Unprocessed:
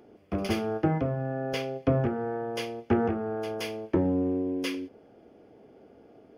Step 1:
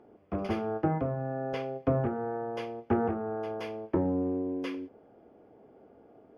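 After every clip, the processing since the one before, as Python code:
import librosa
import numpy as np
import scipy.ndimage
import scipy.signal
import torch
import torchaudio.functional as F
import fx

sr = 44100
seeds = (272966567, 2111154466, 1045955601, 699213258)

y = fx.lowpass(x, sr, hz=1500.0, slope=6)
y = fx.peak_eq(y, sr, hz=990.0, db=5.5, octaves=1.4)
y = y * 10.0 ** (-3.5 / 20.0)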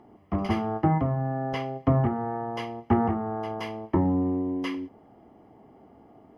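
y = x + 0.6 * np.pad(x, (int(1.0 * sr / 1000.0), 0))[:len(x)]
y = y * 10.0 ** (4.5 / 20.0)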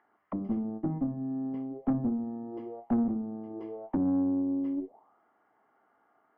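y = fx.auto_wah(x, sr, base_hz=250.0, top_hz=1700.0, q=5.6, full_db=-27.5, direction='down')
y = fx.tube_stage(y, sr, drive_db=27.0, bias=0.35)
y = y * 10.0 ** (5.5 / 20.0)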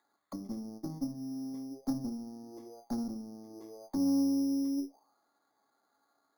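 y = fx.comb_fb(x, sr, f0_hz=280.0, decay_s=0.16, harmonics='all', damping=0.0, mix_pct=70)
y = np.repeat(scipy.signal.resample_poly(y, 1, 8), 8)[:len(y)]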